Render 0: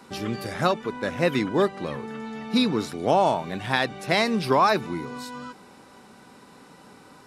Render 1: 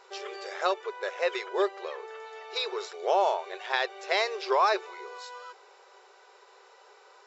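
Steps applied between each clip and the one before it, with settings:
brick-wall band-pass 360–7,700 Hz
level −4 dB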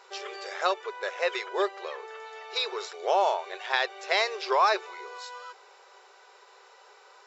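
low-shelf EQ 350 Hz −9.5 dB
level +2.5 dB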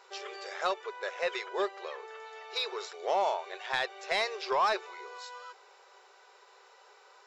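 soft clipping −14 dBFS, distortion −20 dB
level −3.5 dB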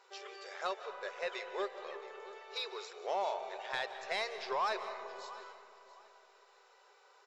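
repeating echo 672 ms, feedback 24%, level −18 dB
on a send at −10 dB: convolution reverb RT60 2.6 s, pre-delay 115 ms
on the sum: level −6.5 dB

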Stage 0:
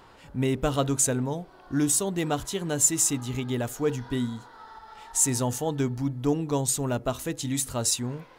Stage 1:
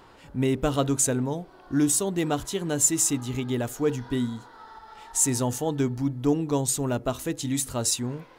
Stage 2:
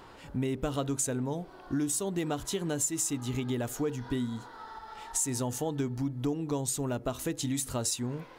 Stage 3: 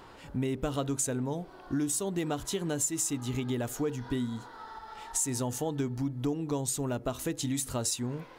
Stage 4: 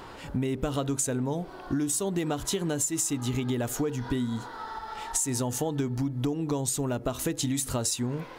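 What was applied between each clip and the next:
parametric band 320 Hz +3 dB 0.79 octaves
downward compressor 4 to 1, threshold −30 dBFS, peak gain reduction 12 dB; level +1 dB
no processing that can be heard
downward compressor 3 to 1, threshold −33 dBFS, peak gain reduction 6.5 dB; level +7 dB

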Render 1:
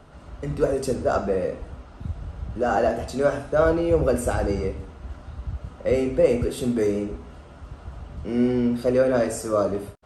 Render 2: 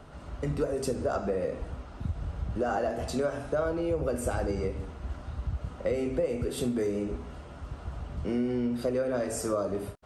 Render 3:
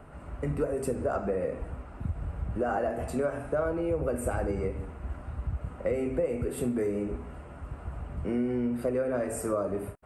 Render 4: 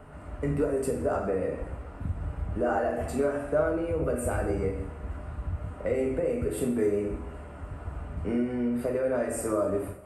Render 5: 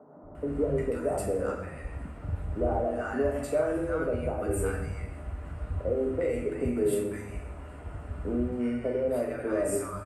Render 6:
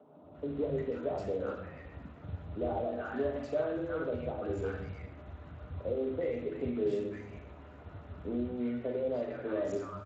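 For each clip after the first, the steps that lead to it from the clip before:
downward compressor 6 to 1, threshold −26 dBFS, peak gain reduction 13.5 dB
flat-topped bell 4,600 Hz −12.5 dB 1.3 octaves
convolution reverb, pre-delay 3 ms, DRR 2 dB
three-band delay without the direct sound mids, lows, highs 230/350 ms, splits 180/980 Hz
level −5.5 dB; Speex 21 kbit/s 16,000 Hz

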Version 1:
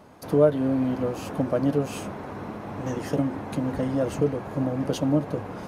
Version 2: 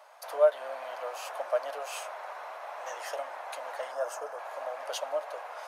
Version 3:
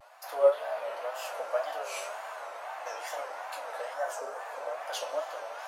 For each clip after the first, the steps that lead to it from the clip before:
elliptic high-pass filter 610 Hz, stop band 70 dB; gain on a spectral selection 0:03.92–0:04.38, 1,800–4,800 Hz −9 dB
coupled-rooms reverb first 0.26 s, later 4 s, from −20 dB, DRR −2.5 dB; tape wow and flutter 130 cents; level −3.5 dB

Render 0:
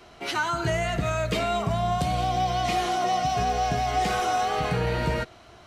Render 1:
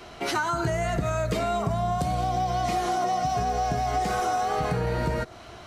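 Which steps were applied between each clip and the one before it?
dynamic equaliser 2,900 Hz, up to −8 dB, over −47 dBFS, Q 1.2
downward compressor, threshold −29 dBFS, peak gain reduction 8 dB
level +6 dB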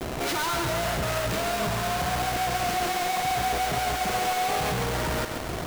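each half-wave held at its own peak
log-companded quantiser 2 bits
feedback echo with a high-pass in the loop 136 ms, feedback 64%, level −6 dB
level −3 dB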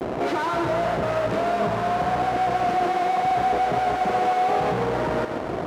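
resonant band-pass 460 Hz, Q 0.61
level +7 dB

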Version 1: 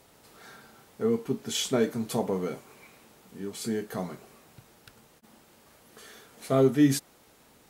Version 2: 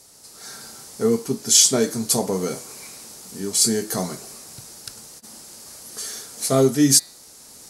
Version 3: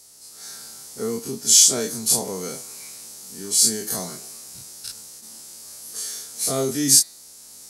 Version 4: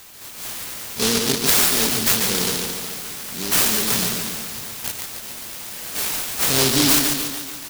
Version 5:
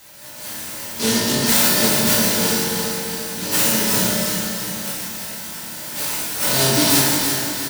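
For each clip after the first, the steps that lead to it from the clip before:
flat-topped bell 7,100 Hz +15.5 dB; hum removal 163.1 Hz, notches 29; automatic gain control gain up to 8 dB
every bin's largest magnitude spread in time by 60 ms; high-shelf EQ 3,000 Hz +8.5 dB; level −10 dB
downward compressor 6 to 1, threshold −21 dBFS, peak gain reduction 11.5 dB; on a send: repeating echo 143 ms, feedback 58%, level −5 dB; on the sum: short delay modulated by noise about 4,400 Hz, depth 0.42 ms; level +7 dB
repeating echo 341 ms, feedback 52%, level −7 dB; convolution reverb RT60 1.2 s, pre-delay 3 ms, DRR −7.5 dB; level −6 dB

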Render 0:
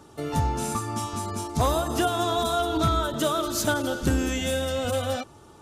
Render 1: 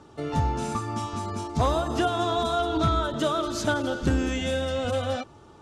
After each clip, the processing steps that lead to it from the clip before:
high-frequency loss of the air 80 metres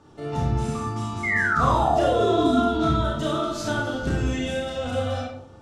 sound drawn into the spectrogram fall, 0:01.23–0:02.60, 220–2,200 Hz −22 dBFS
convolution reverb RT60 0.65 s, pre-delay 32 ms, DRR −3 dB
level −5 dB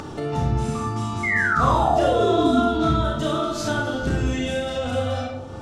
upward compression, threshold −23 dBFS
level +1.5 dB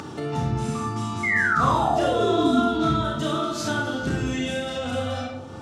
high-pass filter 110 Hz 12 dB per octave
parametric band 580 Hz −4 dB 1.1 octaves

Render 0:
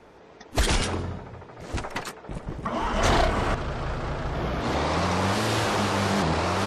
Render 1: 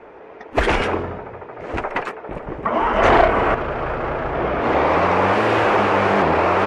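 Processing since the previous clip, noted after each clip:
drawn EQ curve 170 Hz 0 dB, 420 Hz +11 dB, 2,500 Hz +8 dB, 3,900 Hz −6 dB, 12,000 Hz −15 dB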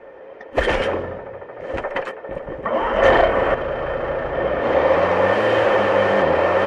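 hollow resonant body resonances 540/1,800/3,100 Hz, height 14 dB, ringing for 60 ms
level −4 dB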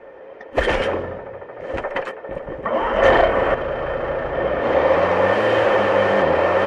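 no processing that can be heard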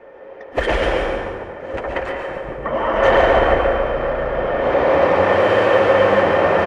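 on a send: repeating echo 141 ms, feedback 40%, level −8.5 dB
on the sum: dense smooth reverb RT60 1.6 s, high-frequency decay 0.7×, pre-delay 105 ms, DRR 1 dB
level −1 dB

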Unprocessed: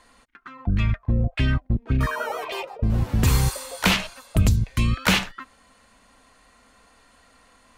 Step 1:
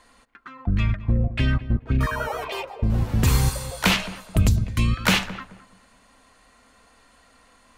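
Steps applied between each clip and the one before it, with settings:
feedback echo with a low-pass in the loop 214 ms, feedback 29%, low-pass 1,300 Hz, level −14 dB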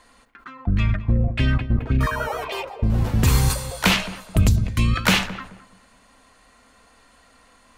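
level that may fall only so fast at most 130 dB per second
level +1.5 dB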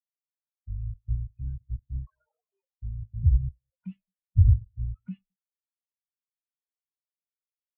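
every bin expanded away from the loudest bin 4 to 1
level −1 dB

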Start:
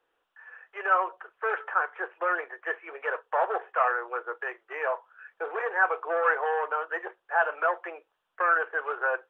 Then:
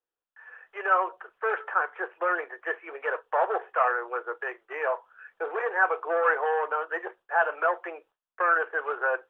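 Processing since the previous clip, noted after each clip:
noise gate with hold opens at −55 dBFS
low-shelf EQ 350 Hz +6 dB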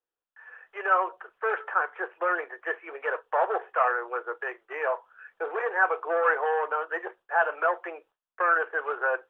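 no processing that can be heard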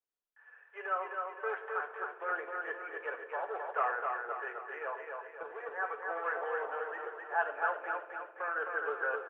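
sample-and-hold tremolo
repeating echo 261 ms, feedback 50%, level −4 dB
on a send at −6 dB: convolution reverb RT60 0.95 s, pre-delay 7 ms
on the sum: level −8.5 dB

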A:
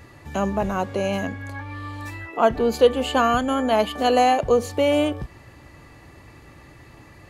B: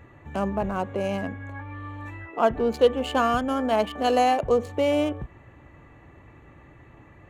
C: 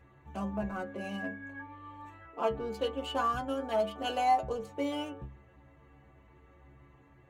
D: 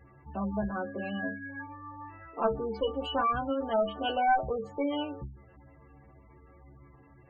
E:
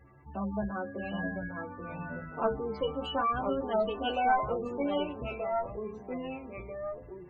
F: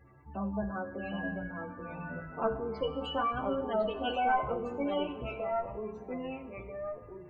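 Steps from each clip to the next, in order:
adaptive Wiener filter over 9 samples; level −3 dB
stiff-string resonator 66 Hz, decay 0.39 s, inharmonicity 0.008
harmonic generator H 2 −6 dB, 5 −20 dB, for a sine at −16 dBFS; gate on every frequency bin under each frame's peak −20 dB strong
delay with pitch and tempo change per echo 718 ms, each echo −2 semitones, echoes 2, each echo −6 dB; level −1.5 dB
flanger 0.29 Hz, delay 8.3 ms, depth 8.3 ms, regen −80%; convolution reverb RT60 1.3 s, pre-delay 48 ms, DRR 13.5 dB; level +3 dB

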